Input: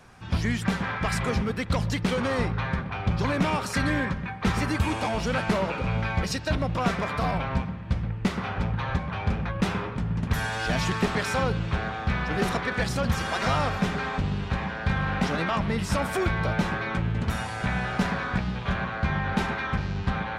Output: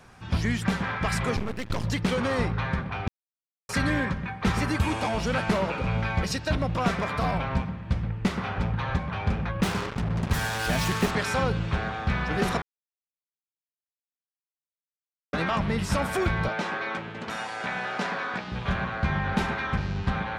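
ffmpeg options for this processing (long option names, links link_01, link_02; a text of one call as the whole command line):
ffmpeg -i in.wav -filter_complex "[0:a]asettb=1/sr,asplit=3[link_01][link_02][link_03];[link_01]atrim=end=1.364[link_04];[link_02]atrim=start=1.36:end=1.84,asetpts=PTS-STARTPTS,afade=type=in:duration=0.004:curve=qsin,afade=type=out:start_time=0.476:duration=0.004:curve=qsin,aeval=exprs='max(val(0),0)':channel_layout=same[link_05];[link_03]atrim=start=1.836[link_06];[link_04][link_05]acrossfade=duration=0.004:curve1=hsin:curve2=qsin[link_07];[link_07][link_06]acrossfade=duration=0.004:curve1=qsin:curve2=hsin,asettb=1/sr,asplit=3[link_08][link_09][link_10];[link_08]atrim=end=9.634[link_11];[link_09]atrim=start=9.63:end=11.11,asetpts=PTS-STARTPTS,afade=type=in:duration=0.004:curve=qsin,afade=type=out:start_time=1.476:duration=0.004:curve=qsin,acrusher=bits=4:mix=0:aa=0.5[link_12];[link_10]atrim=start=11.106[link_13];[link_11][link_12]acrossfade=duration=0.004:curve1=hsin:curve2=qsin[link_14];[link_14][link_13]acrossfade=duration=0.004:curve1=qsin:curve2=hsin,asettb=1/sr,asplit=3[link_15][link_16][link_17];[link_15]atrim=end=16.484[link_18];[link_16]atrim=start=16.48:end=18.52,asetpts=PTS-STARTPTS,afade=type=in:duration=0.004:curve=qsin,afade=type=out:start_time=2.036:duration=0.004:curve=qsin,highpass=320,lowpass=7600[link_19];[link_17]atrim=start=18.516[link_20];[link_18][link_19]acrossfade=duration=0.004:curve1=hsin:curve2=qsin[link_21];[link_21][link_20]acrossfade=duration=0.004:curve1=qsin:curve2=hsin,asplit=5[link_22][link_23][link_24][link_25][link_26];[link_22]atrim=end=3.08,asetpts=PTS-STARTPTS,afade=type=out:start_time=3.076:duration=0.004:curve=hsin[link_27];[link_23]atrim=start=3.08:end=3.69,asetpts=PTS-STARTPTS,volume=0[link_28];[link_24]atrim=start=3.69:end=12.62,asetpts=PTS-STARTPTS,afade=type=in:duration=0.004:curve=hsin,afade=type=out:start_time=8.926:duration=0.004:curve=hsin[link_29];[link_25]atrim=start=12.62:end=15.33,asetpts=PTS-STARTPTS,volume=0[link_30];[link_26]atrim=start=15.33,asetpts=PTS-STARTPTS,afade=type=in:duration=0.004:curve=hsin[link_31];[link_27][link_28][link_29][link_30][link_31]concat=n=5:v=0:a=1" out.wav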